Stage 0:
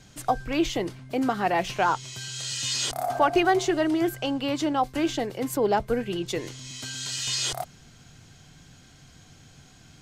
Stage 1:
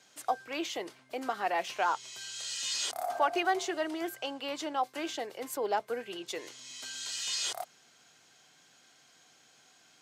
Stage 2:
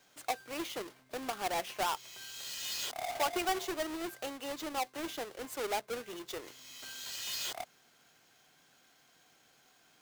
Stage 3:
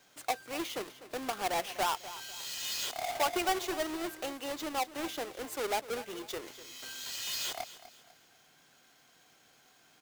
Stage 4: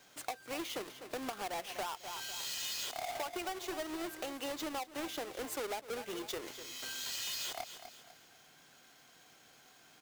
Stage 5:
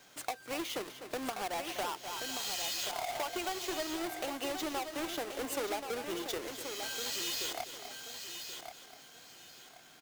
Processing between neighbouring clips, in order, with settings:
high-pass 480 Hz 12 dB/octave; trim -5.5 dB
square wave that keeps the level; trim -7.5 dB
feedback delay 249 ms, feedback 35%, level -15 dB; trim +2 dB
compression 10:1, threshold -39 dBFS, peak gain reduction 14 dB; trim +2 dB
feedback delay 1080 ms, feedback 25%, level -7.5 dB; trim +2.5 dB

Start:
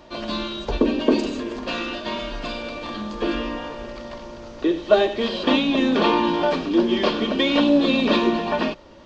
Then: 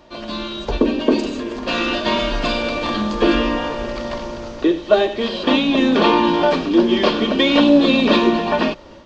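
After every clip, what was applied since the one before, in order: level rider gain up to 11 dB; trim -1 dB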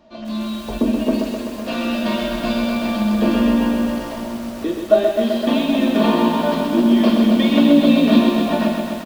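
small resonant body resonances 220/650 Hz, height 14 dB, ringing for 90 ms; on a send: early reflections 17 ms -11.5 dB, 42 ms -9.5 dB; on the sum: bit-crushed delay 128 ms, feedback 80%, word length 5-bit, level -5 dB; trim -8.5 dB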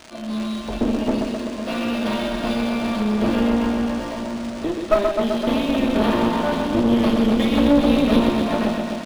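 one-sided clip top -24 dBFS; crackle 450 per s -28 dBFS; decimation joined by straight lines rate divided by 3×

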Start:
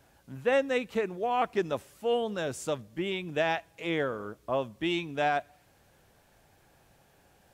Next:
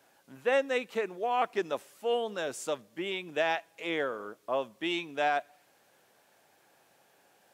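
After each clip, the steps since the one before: Bessel high-pass 360 Hz, order 2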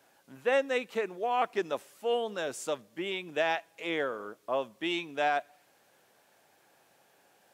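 no audible change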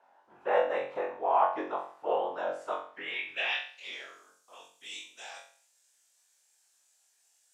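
whisper effect; band-pass sweep 900 Hz -> 7.4 kHz, 2.55–4.23 s; flutter echo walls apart 3.8 m, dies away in 0.45 s; trim +4.5 dB

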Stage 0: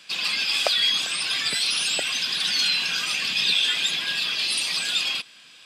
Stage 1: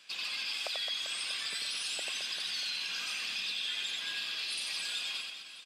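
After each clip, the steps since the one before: high-pass 340 Hz 6 dB/octave; compression 4:1, threshold -27 dBFS, peak gain reduction 8.5 dB; reverse bouncing-ball echo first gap 90 ms, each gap 1.4×, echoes 5; trim -9 dB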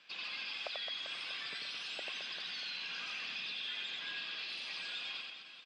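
in parallel at -7 dB: saturation -32 dBFS, distortion -16 dB; on the sum: distance through air 200 m; trim -3.5 dB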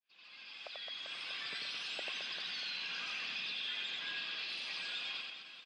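fade-in on the opening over 1.57 s; trim +1 dB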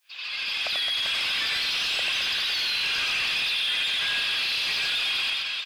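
tilt EQ +4 dB/octave; in parallel at -1 dB: compressor with a negative ratio -40 dBFS, ratio -1; on the sum: overdrive pedal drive 15 dB, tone 2.7 kHz, clips at -19.5 dBFS; trim +3.5 dB

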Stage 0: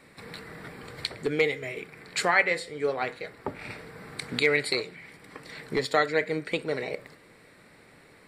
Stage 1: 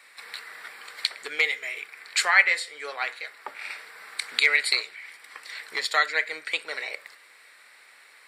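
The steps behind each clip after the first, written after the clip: high-pass 1.3 kHz 12 dB/octave; trim +6 dB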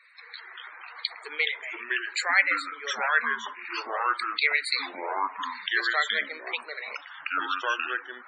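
ever faster or slower copies 149 ms, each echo -4 st, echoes 3; loudest bins only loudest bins 64; trim -3.5 dB

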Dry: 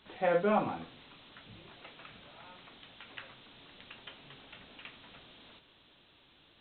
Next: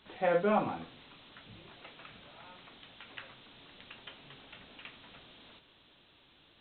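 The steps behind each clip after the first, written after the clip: no audible change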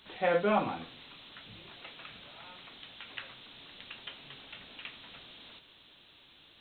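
treble shelf 2.6 kHz +9.5 dB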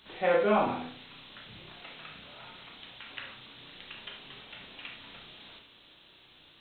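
reverberation, pre-delay 32 ms, DRR 2 dB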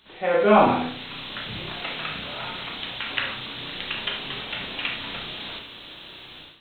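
level rider gain up to 15.5 dB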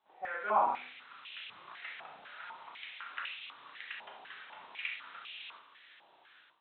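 step-sequenced band-pass 4 Hz 810–2600 Hz; trim -5.5 dB

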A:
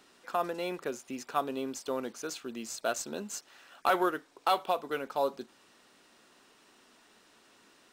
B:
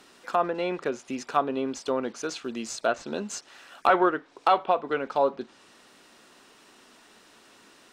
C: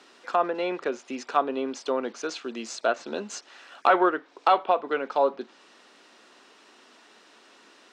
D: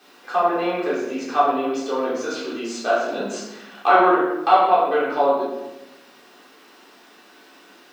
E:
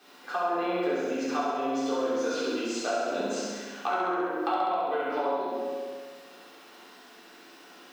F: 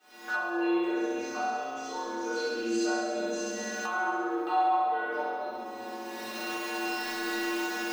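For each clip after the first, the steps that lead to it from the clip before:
low-pass that closes with the level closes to 2.4 kHz, closed at -29 dBFS; trim +6.5 dB
three-band isolator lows -22 dB, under 210 Hz, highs -16 dB, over 7.4 kHz; trim +1 dB
added noise blue -67 dBFS; reverberation RT60 1.0 s, pre-delay 3 ms, DRR -9 dB; trim -4.5 dB
compression 6:1, threshold -24 dBFS, peak gain reduction 14.5 dB; on a send: flutter echo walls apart 11.5 m, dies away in 1.3 s; on the sum: trim -4 dB
spectral sustain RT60 2.19 s; recorder AGC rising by 33 dB/s; inharmonic resonator 110 Hz, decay 0.45 s, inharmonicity 0.008; trim +5.5 dB

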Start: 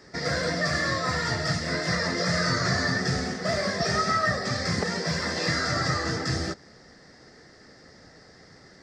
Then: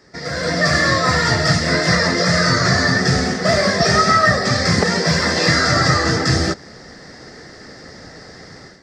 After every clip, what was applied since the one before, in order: level rider gain up to 13 dB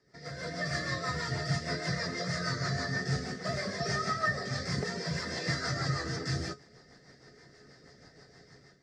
rotary cabinet horn 6.3 Hz; feedback comb 140 Hz, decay 0.17 s, harmonics odd, mix 70%; trim -8.5 dB

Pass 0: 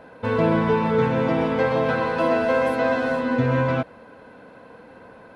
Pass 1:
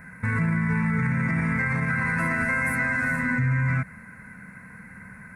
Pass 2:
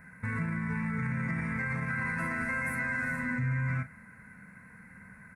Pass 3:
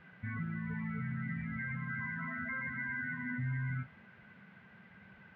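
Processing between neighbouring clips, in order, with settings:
FFT filter 120 Hz 0 dB, 190 Hz +3 dB, 290 Hz -18 dB, 520 Hz -25 dB, 800 Hz -19 dB, 2.1 kHz +7 dB, 3.1 kHz -29 dB, 8.7 kHz +6 dB; peak limiter -24.5 dBFS, peak gain reduction 10.5 dB; trim +8 dB
doubling 40 ms -11.5 dB; trim -8 dB
loudest bins only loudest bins 16; band noise 210–2400 Hz -59 dBFS; trim -5.5 dB

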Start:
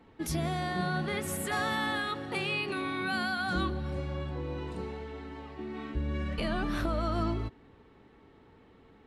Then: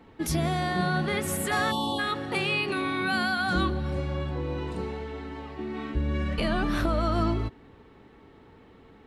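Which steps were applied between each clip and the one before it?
spectral selection erased 1.71–1.99 s, 1.2–2.7 kHz; trim +5 dB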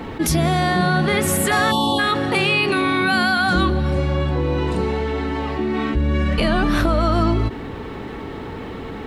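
level flattener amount 50%; trim +7 dB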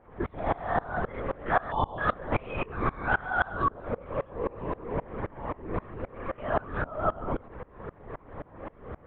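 Butterworth band-pass 740 Hz, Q 0.64; LPC vocoder at 8 kHz whisper; sawtooth tremolo in dB swelling 3.8 Hz, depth 26 dB

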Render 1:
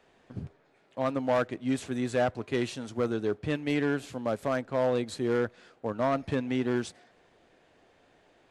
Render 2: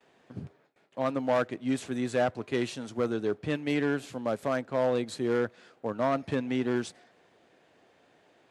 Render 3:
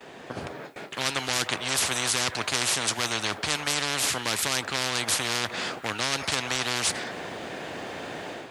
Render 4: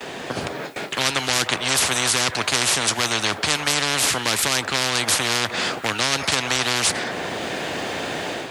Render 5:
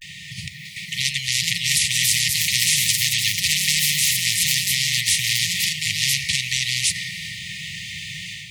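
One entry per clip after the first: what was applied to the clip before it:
high-pass 110 Hz 12 dB/octave; gate with hold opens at -55 dBFS
level rider gain up to 9.5 dB; spectrum-flattening compressor 10:1
three bands compressed up and down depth 40%; trim +6 dB
ever faster or slower copies 645 ms, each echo +4 st, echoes 3; vibrato 0.32 Hz 39 cents; brick-wall FIR band-stop 190–1800 Hz

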